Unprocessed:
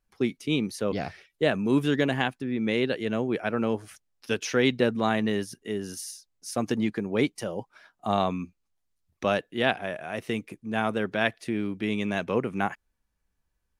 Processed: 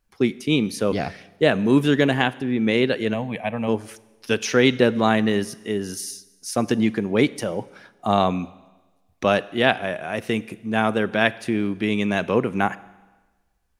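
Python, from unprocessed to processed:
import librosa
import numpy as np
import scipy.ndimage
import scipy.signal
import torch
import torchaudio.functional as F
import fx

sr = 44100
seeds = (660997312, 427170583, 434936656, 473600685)

y = fx.fixed_phaser(x, sr, hz=1400.0, stages=6, at=(3.13, 3.67), fade=0.02)
y = fx.rev_schroeder(y, sr, rt60_s=1.2, comb_ms=32, drr_db=18.5)
y = F.gain(torch.from_numpy(y), 6.0).numpy()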